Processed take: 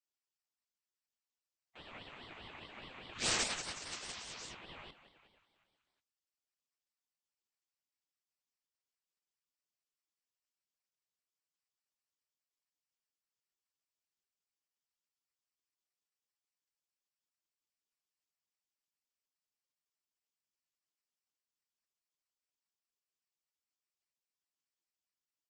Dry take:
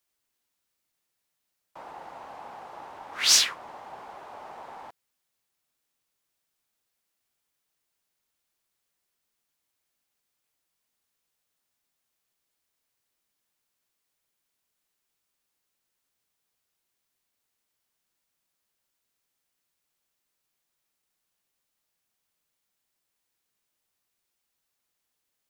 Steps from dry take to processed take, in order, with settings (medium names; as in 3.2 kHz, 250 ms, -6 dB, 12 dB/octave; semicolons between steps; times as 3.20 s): local Wiener filter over 9 samples; high-pass 680 Hz 12 dB/octave; on a send: frequency-shifting echo 183 ms, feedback 57%, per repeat +46 Hz, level -13 dB; on the sum: saturation -21.5 dBFS, distortion -8 dB; spectral gate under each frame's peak -15 dB weak; integer overflow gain 27.5 dB; resampled via 16 kHz; ring modulator with a swept carrier 1.1 kHz, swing 45%, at 4.9 Hz; trim +9 dB